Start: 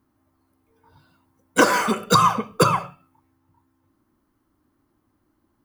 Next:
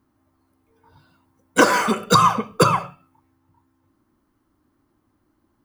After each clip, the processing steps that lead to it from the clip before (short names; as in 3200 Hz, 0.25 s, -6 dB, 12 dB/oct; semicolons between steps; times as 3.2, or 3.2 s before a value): bell 16000 Hz -4 dB 0.73 oct; gain +1.5 dB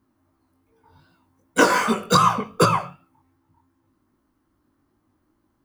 chorus 2.6 Hz, delay 17.5 ms, depth 5.3 ms; gain +1.5 dB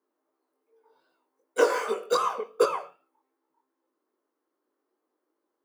ladder high-pass 400 Hz, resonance 65%